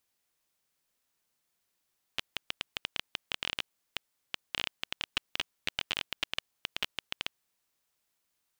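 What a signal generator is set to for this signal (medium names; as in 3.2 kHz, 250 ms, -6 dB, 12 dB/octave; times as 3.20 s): random clicks 13 per s -13 dBFS 5.15 s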